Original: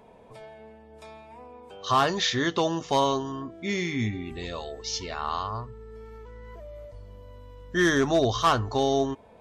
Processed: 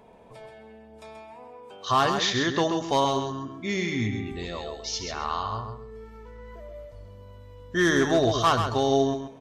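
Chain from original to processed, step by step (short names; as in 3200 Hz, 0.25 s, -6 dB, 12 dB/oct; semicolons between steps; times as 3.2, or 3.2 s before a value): 1.19–1.87 HPF 160 Hz 6 dB/oct; on a send: feedback echo 0.132 s, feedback 21%, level -7 dB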